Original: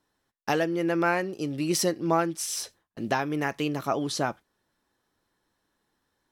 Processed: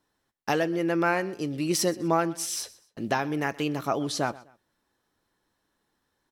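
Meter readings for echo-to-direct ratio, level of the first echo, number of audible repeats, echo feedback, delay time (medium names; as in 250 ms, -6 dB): -20.0 dB, -20.5 dB, 2, 31%, 125 ms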